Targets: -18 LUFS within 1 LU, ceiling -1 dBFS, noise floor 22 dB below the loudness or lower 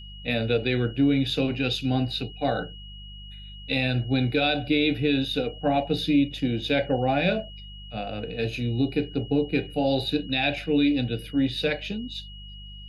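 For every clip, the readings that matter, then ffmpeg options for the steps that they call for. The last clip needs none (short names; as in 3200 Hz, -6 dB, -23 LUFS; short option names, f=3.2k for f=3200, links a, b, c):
hum 50 Hz; harmonics up to 200 Hz; hum level -40 dBFS; steady tone 2900 Hz; tone level -44 dBFS; loudness -25.5 LUFS; peak -12.0 dBFS; loudness target -18.0 LUFS
-> -af "bandreject=f=50:t=h:w=4,bandreject=f=100:t=h:w=4,bandreject=f=150:t=h:w=4,bandreject=f=200:t=h:w=4"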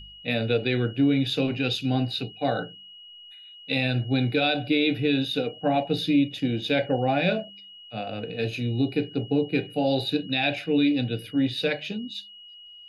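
hum none; steady tone 2900 Hz; tone level -44 dBFS
-> -af "bandreject=f=2.9k:w=30"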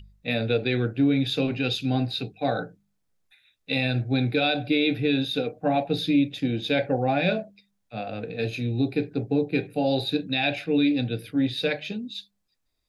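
steady tone none; loudness -25.5 LUFS; peak -12.5 dBFS; loudness target -18.0 LUFS
-> -af "volume=7.5dB"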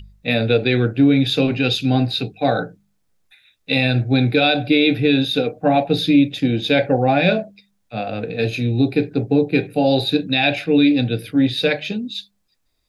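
loudness -18.0 LUFS; peak -5.0 dBFS; noise floor -67 dBFS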